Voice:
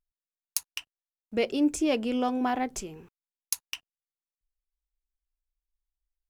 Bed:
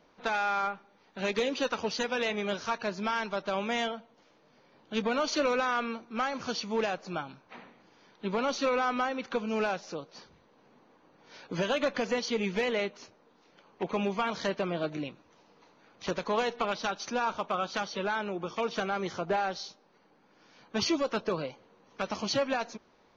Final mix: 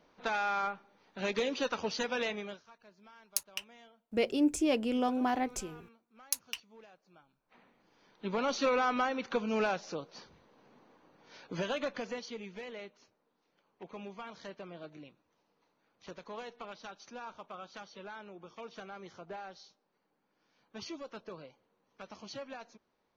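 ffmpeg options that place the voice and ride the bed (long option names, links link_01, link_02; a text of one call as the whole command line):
ffmpeg -i stem1.wav -i stem2.wav -filter_complex "[0:a]adelay=2800,volume=-3dB[link_01];[1:a]volume=22.5dB,afade=type=out:start_time=2.22:duration=0.41:silence=0.0668344,afade=type=in:start_time=7.38:duration=1.25:silence=0.0530884,afade=type=out:start_time=10.88:duration=1.59:silence=0.199526[link_02];[link_01][link_02]amix=inputs=2:normalize=0" out.wav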